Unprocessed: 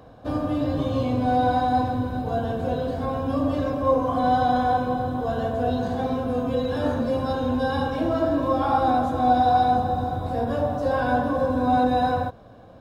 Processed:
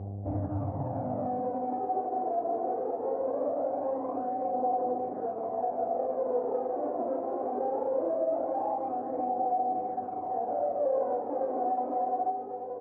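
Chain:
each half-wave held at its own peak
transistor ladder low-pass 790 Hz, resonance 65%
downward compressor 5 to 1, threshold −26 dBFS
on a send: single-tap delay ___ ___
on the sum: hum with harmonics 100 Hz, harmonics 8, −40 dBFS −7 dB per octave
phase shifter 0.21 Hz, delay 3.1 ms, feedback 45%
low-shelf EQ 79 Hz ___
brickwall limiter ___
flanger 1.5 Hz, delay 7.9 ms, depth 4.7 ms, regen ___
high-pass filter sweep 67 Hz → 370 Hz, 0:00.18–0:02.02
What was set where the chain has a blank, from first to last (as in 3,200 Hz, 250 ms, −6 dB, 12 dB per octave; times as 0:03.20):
581 ms, −7 dB, −6 dB, −19.5 dBFS, −74%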